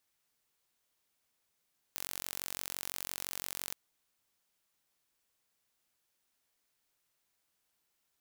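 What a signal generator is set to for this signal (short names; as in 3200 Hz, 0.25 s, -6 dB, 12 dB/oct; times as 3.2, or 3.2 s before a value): pulse train 45.9/s, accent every 0, -11.5 dBFS 1.78 s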